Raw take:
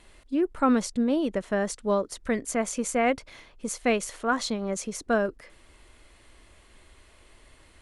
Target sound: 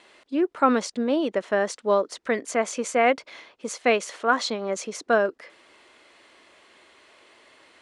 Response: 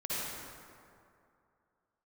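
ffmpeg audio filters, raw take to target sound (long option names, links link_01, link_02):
-af "highpass=340,lowpass=5800,volume=5dB"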